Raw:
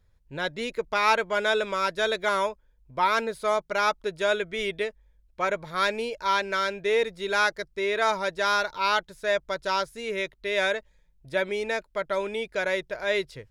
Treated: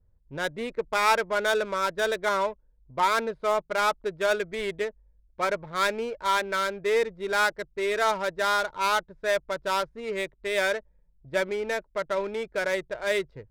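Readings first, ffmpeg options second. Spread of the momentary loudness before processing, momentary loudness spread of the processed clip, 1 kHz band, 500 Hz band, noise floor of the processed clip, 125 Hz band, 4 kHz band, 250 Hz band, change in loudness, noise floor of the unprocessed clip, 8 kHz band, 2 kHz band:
6 LU, 7 LU, 0.0 dB, 0.0 dB, -64 dBFS, -0.5 dB, -2.0 dB, -0.5 dB, -0.5 dB, -64 dBFS, +3.0 dB, -1.0 dB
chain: -af "adynamicequalizer=threshold=0.00562:dfrequency=2800:dqfactor=2.7:tfrequency=2800:tqfactor=2.7:attack=5:release=100:ratio=0.375:range=2.5:mode=cutabove:tftype=bell,adynamicsmooth=sensitivity=4.5:basefreq=840"

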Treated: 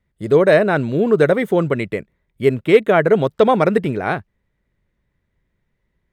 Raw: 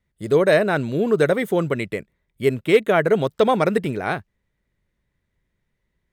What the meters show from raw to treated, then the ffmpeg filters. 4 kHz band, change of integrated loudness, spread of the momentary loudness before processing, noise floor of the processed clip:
0.0 dB, +4.0 dB, 9 LU, -72 dBFS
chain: -af "highshelf=f=4k:g=-9.5,volume=4dB"

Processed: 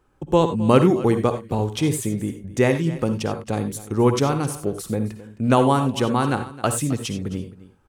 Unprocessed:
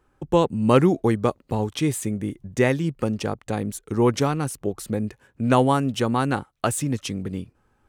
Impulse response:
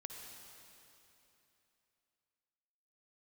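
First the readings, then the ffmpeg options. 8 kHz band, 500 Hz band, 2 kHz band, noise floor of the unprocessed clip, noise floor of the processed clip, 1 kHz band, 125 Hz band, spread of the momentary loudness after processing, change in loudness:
+2.0 dB, +2.0 dB, +0.5 dB, -66 dBFS, -52 dBFS, +1.5 dB, +2.0 dB, 11 LU, +2.0 dB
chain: -filter_complex "[0:a]equalizer=f=1.8k:t=o:w=0.48:g=-3,aecho=1:1:264:0.133[a];[1:a]atrim=start_sample=2205,atrim=end_sample=4410[b];[a][b]afir=irnorm=-1:irlink=0,volume=7dB"

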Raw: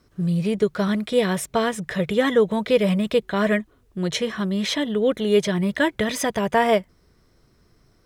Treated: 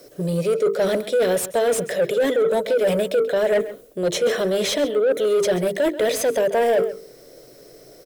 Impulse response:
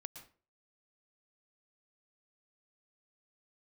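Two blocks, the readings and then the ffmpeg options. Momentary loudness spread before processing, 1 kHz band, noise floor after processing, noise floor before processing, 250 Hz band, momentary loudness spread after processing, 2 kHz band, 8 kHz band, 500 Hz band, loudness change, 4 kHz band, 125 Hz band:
6 LU, -2.5 dB, -47 dBFS, -60 dBFS, -5.5 dB, 4 LU, -2.0 dB, +4.0 dB, +4.0 dB, +1.5 dB, -0.5 dB, -5.0 dB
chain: -filter_complex "[0:a]bandreject=f=50:t=h:w=6,bandreject=f=100:t=h:w=6,bandreject=f=150:t=h:w=6,bandreject=f=200:t=h:w=6,bandreject=f=250:t=h:w=6,bandreject=f=300:t=h:w=6,bandreject=f=350:t=h:w=6,bandreject=f=400:t=h:w=6,bandreject=f=450:t=h:w=6,acrossover=split=310|5900[a][b][c];[a]aecho=1:1:7:0.99[d];[b]lowshelf=f=750:t=q:w=3:g=11[e];[c]acontrast=71[f];[d][e][f]amix=inputs=3:normalize=0,alimiter=limit=-3dB:level=0:latency=1:release=18,aemphasis=mode=production:type=50fm,areverse,acompressor=threshold=-22dB:ratio=5,areverse,asplit=2[g][h];[h]highpass=f=720:p=1,volume=18dB,asoftclip=type=tanh:threshold=-10.5dB[i];[g][i]amix=inputs=2:normalize=0,lowpass=f=3k:p=1,volume=-6dB,asplit=2[j][k];[k]adelay=134.1,volume=-15dB,highshelf=f=4k:g=-3.02[l];[j][l]amix=inputs=2:normalize=0"

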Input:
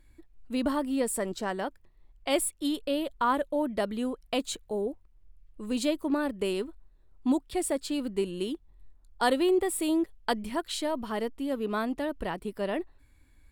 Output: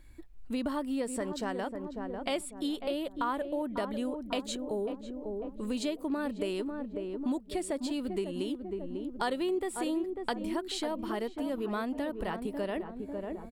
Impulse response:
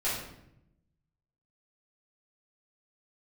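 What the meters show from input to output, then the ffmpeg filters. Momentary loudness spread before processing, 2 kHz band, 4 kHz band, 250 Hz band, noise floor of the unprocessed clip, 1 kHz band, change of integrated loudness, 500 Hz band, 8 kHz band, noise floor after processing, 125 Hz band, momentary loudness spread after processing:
8 LU, -4.5 dB, -4.0 dB, -3.0 dB, -60 dBFS, -4.5 dB, -4.5 dB, -3.5 dB, -8.0 dB, -48 dBFS, -1.5 dB, 5 LU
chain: -filter_complex "[0:a]acrossover=split=8200[a][b];[b]acompressor=threshold=-51dB:ratio=4:attack=1:release=60[c];[a][c]amix=inputs=2:normalize=0,asplit=2[d][e];[e]adelay=546,lowpass=f=840:p=1,volume=-8dB,asplit=2[f][g];[g]adelay=546,lowpass=f=840:p=1,volume=0.53,asplit=2[h][i];[i]adelay=546,lowpass=f=840:p=1,volume=0.53,asplit=2[j][k];[k]adelay=546,lowpass=f=840:p=1,volume=0.53,asplit=2[l][m];[m]adelay=546,lowpass=f=840:p=1,volume=0.53,asplit=2[n][o];[o]adelay=546,lowpass=f=840:p=1,volume=0.53[p];[f][h][j][l][n][p]amix=inputs=6:normalize=0[q];[d][q]amix=inputs=2:normalize=0,acompressor=threshold=-38dB:ratio=2.5,volume=4dB"

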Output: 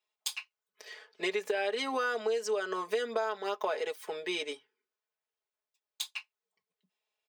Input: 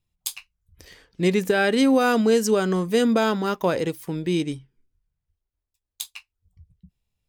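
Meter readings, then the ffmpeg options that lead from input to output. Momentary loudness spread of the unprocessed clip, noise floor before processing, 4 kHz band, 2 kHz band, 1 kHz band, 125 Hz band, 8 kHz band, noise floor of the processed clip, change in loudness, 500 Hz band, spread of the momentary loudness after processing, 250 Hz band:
16 LU, -84 dBFS, -6.5 dB, -8.0 dB, -8.5 dB, under -30 dB, -10.0 dB, under -85 dBFS, -12.0 dB, -10.0 dB, 13 LU, -22.5 dB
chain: -af "highpass=f=470:w=0.5412,highpass=f=470:w=1.3066,equalizer=f=13k:w=0.52:g=-14.5,aecho=1:1:4.7:0.91,acompressor=threshold=-29dB:ratio=6"

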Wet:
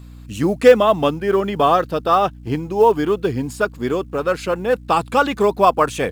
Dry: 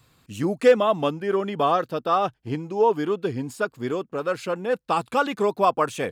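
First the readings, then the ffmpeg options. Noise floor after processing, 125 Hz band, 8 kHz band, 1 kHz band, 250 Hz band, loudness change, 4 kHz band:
-39 dBFS, +6.5 dB, +6.5 dB, +6.0 dB, +6.0 dB, +6.0 dB, +6.0 dB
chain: -af "aeval=exprs='val(0)+0.00708*(sin(2*PI*60*n/s)+sin(2*PI*2*60*n/s)/2+sin(2*PI*3*60*n/s)/3+sin(2*PI*4*60*n/s)/4+sin(2*PI*5*60*n/s)/5)':c=same,acrusher=bits=9:mode=log:mix=0:aa=0.000001,volume=6dB"

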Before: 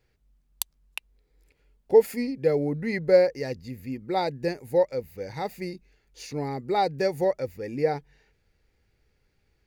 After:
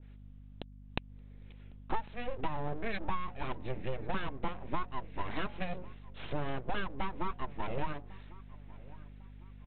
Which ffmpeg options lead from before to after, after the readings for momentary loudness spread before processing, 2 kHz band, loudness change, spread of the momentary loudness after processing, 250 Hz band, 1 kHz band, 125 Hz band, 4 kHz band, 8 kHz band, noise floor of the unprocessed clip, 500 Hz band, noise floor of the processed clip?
16 LU, -5.0 dB, -13.0 dB, 16 LU, -10.5 dB, -6.5 dB, -5.5 dB, -7.5 dB, n/a, -70 dBFS, -19.0 dB, -52 dBFS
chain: -filter_complex "[0:a]aemphasis=mode=production:type=cd,bandreject=f=60:t=h:w=6,bandreject=f=120:t=h:w=6,bandreject=f=180:t=h:w=6,bandreject=f=240:t=h:w=6,bandreject=f=300:t=h:w=6,bandreject=f=360:t=h:w=6,bandreject=f=420:t=h:w=6,acompressor=threshold=-35dB:ratio=12,aresample=8000,aeval=exprs='abs(val(0))':c=same,aresample=44100,aeval=exprs='val(0)+0.00141*(sin(2*PI*50*n/s)+sin(2*PI*2*50*n/s)/2+sin(2*PI*3*50*n/s)/3+sin(2*PI*4*50*n/s)/4+sin(2*PI*5*50*n/s)/5)':c=same,asplit=2[a][b];[b]adelay=1100,lowpass=f=2k:p=1,volume=-21dB,asplit=2[c][d];[d]adelay=1100,lowpass=f=2k:p=1,volume=0.39,asplit=2[e][f];[f]adelay=1100,lowpass=f=2k:p=1,volume=0.39[g];[c][e][g]amix=inputs=3:normalize=0[h];[a][h]amix=inputs=2:normalize=0,adynamicequalizer=threshold=0.00141:dfrequency=1600:dqfactor=0.7:tfrequency=1600:tqfactor=0.7:attack=5:release=100:ratio=0.375:range=1.5:mode=cutabove:tftype=highshelf,volume=6.5dB"

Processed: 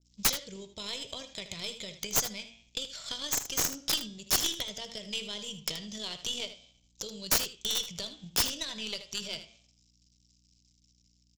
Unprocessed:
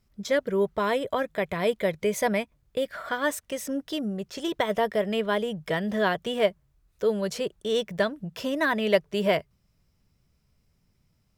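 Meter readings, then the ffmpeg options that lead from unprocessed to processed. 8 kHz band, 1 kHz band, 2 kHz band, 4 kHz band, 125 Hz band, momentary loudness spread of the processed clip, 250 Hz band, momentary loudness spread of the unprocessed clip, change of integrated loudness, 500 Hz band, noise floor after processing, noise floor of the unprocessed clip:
+10.5 dB, -13.0 dB, -10.5 dB, +4.5 dB, -10.0 dB, 12 LU, -14.5 dB, 7 LU, -4.5 dB, -19.5 dB, -68 dBFS, -70 dBFS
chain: -af "bass=f=250:g=11,treble=f=4k:g=12,bandreject=f=113.6:t=h:w=4,bandreject=f=227.2:t=h:w=4,bandreject=f=340.8:t=h:w=4,bandreject=f=454.4:t=h:w=4,bandreject=f=568:t=h:w=4,bandreject=f=681.6:t=h:w=4,bandreject=f=795.2:t=h:w=4,bandreject=f=908.8:t=h:w=4,bandreject=f=1.0224k:t=h:w=4,bandreject=f=1.136k:t=h:w=4,bandreject=f=1.2496k:t=h:w=4,bandreject=f=1.3632k:t=h:w=4,bandreject=f=1.4768k:t=h:w=4,bandreject=f=1.5904k:t=h:w=4,bandreject=f=1.704k:t=h:w=4,bandreject=f=1.8176k:t=h:w=4,bandreject=f=1.9312k:t=h:w=4,bandreject=f=2.0448k:t=h:w=4,bandreject=f=2.1584k:t=h:w=4,bandreject=f=2.272k:t=h:w=4,bandreject=f=2.3856k:t=h:w=4,bandreject=f=2.4992k:t=h:w=4,bandreject=f=2.6128k:t=h:w=4,bandreject=f=2.7264k:t=h:w=4,bandreject=f=2.84k:t=h:w=4,bandreject=f=2.9536k:t=h:w=4,bandreject=f=3.0672k:t=h:w=4,bandreject=f=3.1808k:t=h:w=4,bandreject=f=3.2944k:t=h:w=4,bandreject=f=3.408k:t=h:w=4,bandreject=f=3.5216k:t=h:w=4,acompressor=threshold=-27dB:ratio=8,aresample=16000,aeval=exprs='sgn(val(0))*max(abs(val(0))-0.0015,0)':c=same,aresample=44100,aexciter=amount=11.6:drive=6.4:freq=2.5k,tremolo=f=45:d=0.261,aeval=exprs='1.33*(cos(1*acos(clip(val(0)/1.33,-1,1)))-cos(1*PI/2))+0.0299*(cos(4*acos(clip(val(0)/1.33,-1,1)))-cos(4*PI/2))+0.266*(cos(5*acos(clip(val(0)/1.33,-1,1)))-cos(5*PI/2))+0.15*(cos(6*acos(clip(val(0)/1.33,-1,1)))-cos(6*PI/2))+0.211*(cos(7*acos(clip(val(0)/1.33,-1,1)))-cos(7*PI/2))':c=same,flanger=delay=8.6:depth=7:regen=-86:speed=0.4:shape=triangular,aeval=exprs='(mod(2.11*val(0)+1,2)-1)/2.11':c=same,aeval=exprs='val(0)+0.00112*(sin(2*PI*60*n/s)+sin(2*PI*2*60*n/s)/2+sin(2*PI*3*60*n/s)/3+sin(2*PI*4*60*n/s)/4+sin(2*PI*5*60*n/s)/5)':c=same,aecho=1:1:78:0.251,adynamicequalizer=threshold=0.0178:dfrequency=2100:dqfactor=0.7:tfrequency=2100:tqfactor=0.7:attack=5:release=100:ratio=0.375:range=1.5:mode=cutabove:tftype=highshelf,volume=-8.5dB"

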